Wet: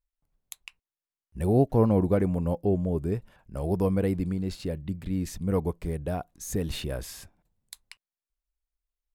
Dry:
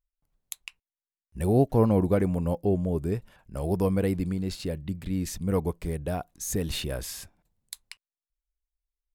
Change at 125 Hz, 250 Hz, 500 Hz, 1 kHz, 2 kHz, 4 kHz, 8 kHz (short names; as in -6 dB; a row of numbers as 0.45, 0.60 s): 0.0, 0.0, 0.0, -0.5, -2.5, -4.0, -4.5 dB